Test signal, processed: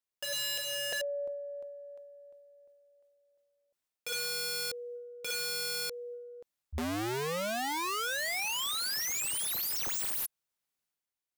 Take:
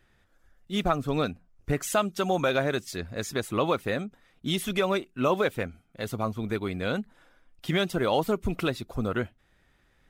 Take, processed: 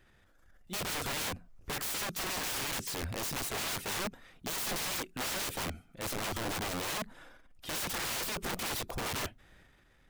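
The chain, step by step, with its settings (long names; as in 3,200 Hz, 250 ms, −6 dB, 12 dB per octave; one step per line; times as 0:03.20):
transient designer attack −6 dB, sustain +6 dB
wrap-around overflow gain 30.5 dB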